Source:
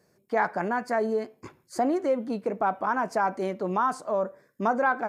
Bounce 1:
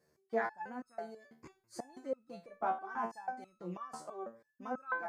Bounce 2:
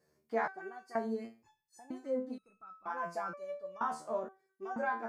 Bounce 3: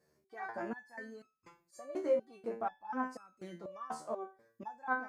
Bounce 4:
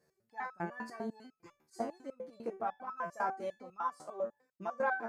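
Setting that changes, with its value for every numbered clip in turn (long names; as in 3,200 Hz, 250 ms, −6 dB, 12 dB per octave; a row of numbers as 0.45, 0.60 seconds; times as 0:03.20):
step-sequenced resonator, speed: 6.1, 2.1, 4.1, 10 Hertz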